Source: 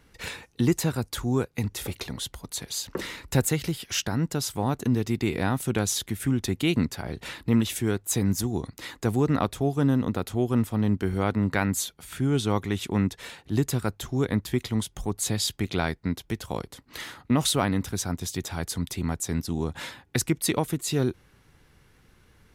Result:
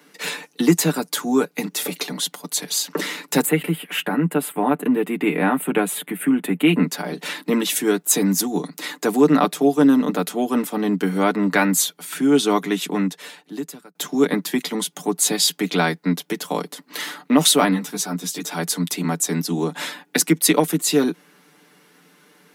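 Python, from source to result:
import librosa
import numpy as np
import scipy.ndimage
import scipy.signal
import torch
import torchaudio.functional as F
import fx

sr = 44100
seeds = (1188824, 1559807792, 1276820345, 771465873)

y = fx.curve_eq(x, sr, hz=(2700.0, 5800.0, 8600.0), db=(0, -28, -5), at=(3.46, 6.87))
y = fx.ensemble(y, sr, at=(17.71, 18.5), fade=0.02)
y = fx.edit(y, sr, fx.fade_out_span(start_s=12.6, length_s=1.35), tone=tone)
y = scipy.signal.sosfilt(scipy.signal.butter(12, 170.0, 'highpass', fs=sr, output='sos'), y)
y = fx.high_shelf(y, sr, hz=11000.0, db=5.0)
y = y + 0.65 * np.pad(y, (int(6.8 * sr / 1000.0), 0))[:len(y)]
y = y * 10.0 ** (7.0 / 20.0)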